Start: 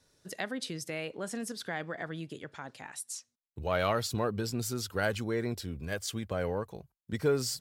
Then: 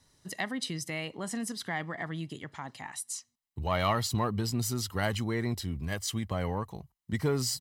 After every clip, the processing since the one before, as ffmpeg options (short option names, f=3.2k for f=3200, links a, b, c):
-filter_complex "[0:a]aecho=1:1:1:0.52,asplit=2[a][b];[b]asoftclip=type=tanh:threshold=-27dB,volume=-12dB[c];[a][c]amix=inputs=2:normalize=0"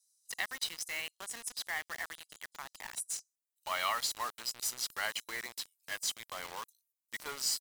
-filter_complex "[0:a]highpass=1.2k,acrossover=split=5800[a][b];[a]acrusher=bits=6:mix=0:aa=0.000001[c];[c][b]amix=inputs=2:normalize=0"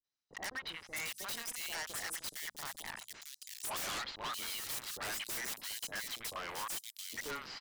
-filter_complex "[0:a]bandreject=f=60:t=h:w=6,bandreject=f=120:t=h:w=6,bandreject=f=180:t=h:w=6,bandreject=f=240:t=h:w=6,acrossover=split=630|3000[a][b][c];[b]adelay=40[d];[c]adelay=670[e];[a][d][e]amix=inputs=3:normalize=0,aeval=exprs='0.0119*(abs(mod(val(0)/0.0119+3,4)-2)-1)':c=same,volume=4.5dB"